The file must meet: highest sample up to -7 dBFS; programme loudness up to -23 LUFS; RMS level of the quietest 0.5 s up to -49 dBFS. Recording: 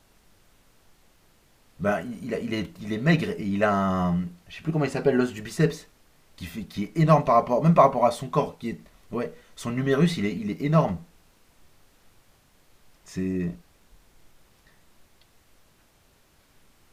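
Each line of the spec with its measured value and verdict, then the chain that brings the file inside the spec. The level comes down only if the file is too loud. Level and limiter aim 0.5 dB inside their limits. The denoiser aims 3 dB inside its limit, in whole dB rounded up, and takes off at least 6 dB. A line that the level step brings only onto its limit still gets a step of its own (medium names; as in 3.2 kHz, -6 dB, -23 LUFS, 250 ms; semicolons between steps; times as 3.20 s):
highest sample -4.5 dBFS: fail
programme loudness -25.0 LUFS: pass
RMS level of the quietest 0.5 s -61 dBFS: pass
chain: peak limiter -7.5 dBFS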